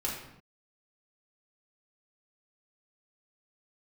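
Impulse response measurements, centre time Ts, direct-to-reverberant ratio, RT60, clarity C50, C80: 46 ms, -4.5 dB, not exponential, 3.0 dB, 6.5 dB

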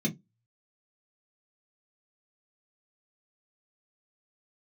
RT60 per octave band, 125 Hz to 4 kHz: 0.25, 0.25, 0.20, 0.15, 0.15, 0.10 s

